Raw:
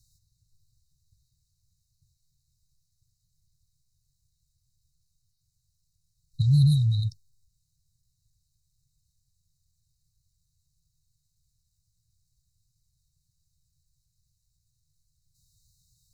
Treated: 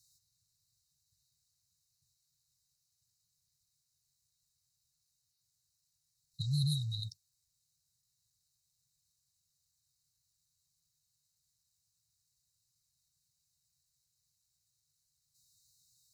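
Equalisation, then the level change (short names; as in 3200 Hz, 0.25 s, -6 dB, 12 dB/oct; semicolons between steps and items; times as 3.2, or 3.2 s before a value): HPF 620 Hz 6 dB/oct; 0.0 dB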